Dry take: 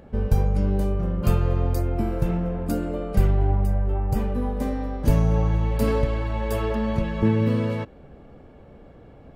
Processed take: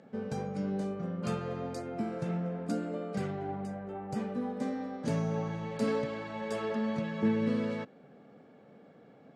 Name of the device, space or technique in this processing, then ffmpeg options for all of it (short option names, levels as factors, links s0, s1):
television speaker: -af "highpass=f=170:w=0.5412,highpass=f=170:w=1.3066,equalizer=f=340:t=q:w=4:g=-7,equalizer=f=580:t=q:w=4:g=-3,equalizer=f=990:t=q:w=4:g=-6,equalizer=f=2800:t=q:w=4:g=-4,lowpass=f=8100:w=0.5412,lowpass=f=8100:w=1.3066,volume=0.596"